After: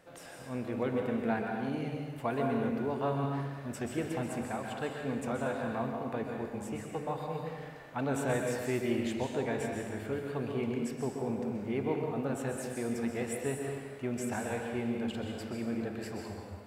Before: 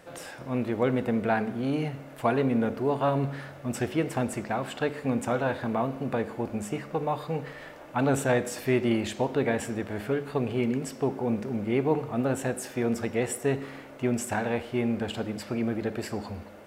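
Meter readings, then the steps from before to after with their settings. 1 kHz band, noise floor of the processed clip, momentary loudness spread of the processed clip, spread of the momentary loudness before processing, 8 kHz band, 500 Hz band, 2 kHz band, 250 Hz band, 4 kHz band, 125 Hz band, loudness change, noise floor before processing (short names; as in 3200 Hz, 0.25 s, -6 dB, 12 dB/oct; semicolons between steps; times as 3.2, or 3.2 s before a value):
-6.0 dB, -47 dBFS, 7 LU, 8 LU, -6.0 dB, -6.0 dB, -6.0 dB, -6.0 dB, -6.5 dB, -6.0 dB, -6.0 dB, -45 dBFS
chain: plate-style reverb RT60 1.2 s, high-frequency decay 0.95×, pre-delay 0.115 s, DRR 1.5 dB; gain -8.5 dB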